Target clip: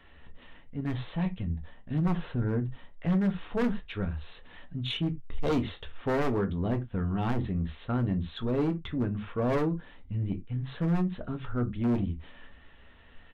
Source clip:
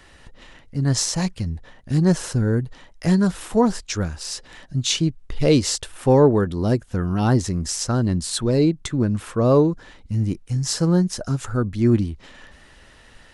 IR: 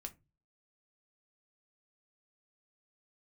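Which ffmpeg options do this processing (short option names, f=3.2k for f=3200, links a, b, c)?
-filter_complex "[0:a]aresample=8000,aresample=44100,aeval=exprs='0.251*(abs(mod(val(0)/0.251+3,4)-2)-1)':c=same[a];[1:a]atrim=start_sample=2205,atrim=end_sample=4410[b];[a][b]afir=irnorm=-1:irlink=0,aeval=exprs='(tanh(7.08*val(0)+0.15)-tanh(0.15))/7.08':c=same,volume=-3dB"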